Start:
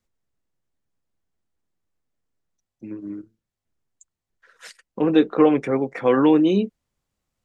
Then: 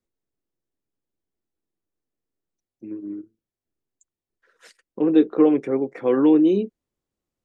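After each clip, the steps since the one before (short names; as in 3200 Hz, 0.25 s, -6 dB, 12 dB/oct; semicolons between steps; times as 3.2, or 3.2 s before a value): bell 350 Hz +10.5 dB 1.2 oct; gain -8.5 dB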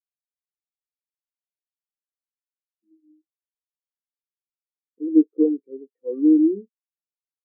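spectral expander 2.5:1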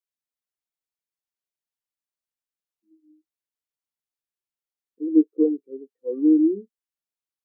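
dynamic EQ 250 Hz, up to -6 dB, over -32 dBFS, Q 4.1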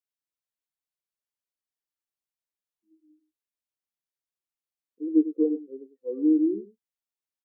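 outdoor echo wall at 17 m, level -13 dB; gain -4 dB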